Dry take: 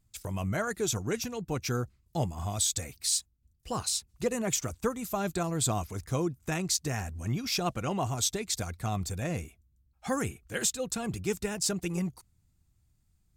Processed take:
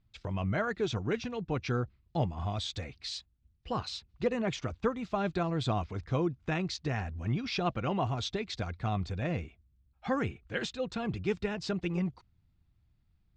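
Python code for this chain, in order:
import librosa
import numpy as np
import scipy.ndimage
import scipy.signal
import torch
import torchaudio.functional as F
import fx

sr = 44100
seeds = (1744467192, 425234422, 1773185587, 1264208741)

y = scipy.signal.sosfilt(scipy.signal.butter(4, 4000.0, 'lowpass', fs=sr, output='sos'), x)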